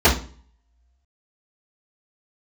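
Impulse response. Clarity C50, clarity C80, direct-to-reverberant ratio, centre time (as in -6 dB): 9.5 dB, 15.0 dB, -13.5 dB, 22 ms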